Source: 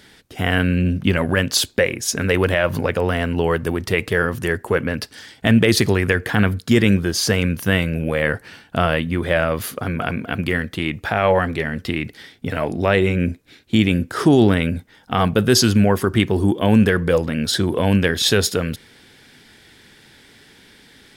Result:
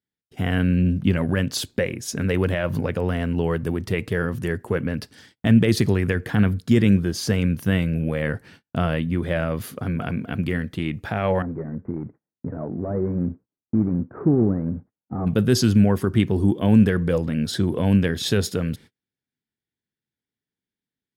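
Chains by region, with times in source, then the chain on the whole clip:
11.42–15.27 CVSD 16 kbps + Gaussian blur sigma 7.2 samples + low shelf 74 Hz -11 dB
whole clip: gate -39 dBFS, range -38 dB; bell 150 Hz +9.5 dB 2.6 oct; gain -9 dB

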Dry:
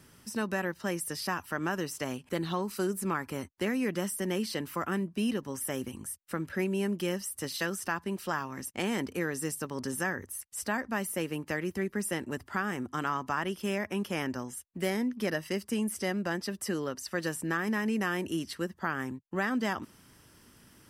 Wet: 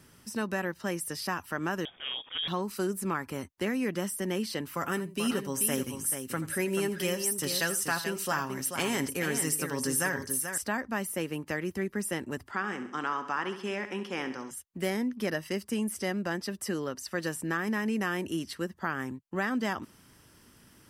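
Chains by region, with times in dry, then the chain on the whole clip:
1.85–2.48 self-modulated delay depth 0.089 ms + transient shaper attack -10 dB, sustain +8 dB + inverted band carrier 3500 Hz
4.76–10.58 high shelf 3500 Hz +8.5 dB + comb 7.3 ms, depth 42% + tapped delay 83/435 ms -15.5/-7.5 dB
12.51–14.51 BPF 250–6000 Hz + notch 640 Hz, Q 6.1 + feedback echo 68 ms, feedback 52%, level -11.5 dB
whole clip: dry

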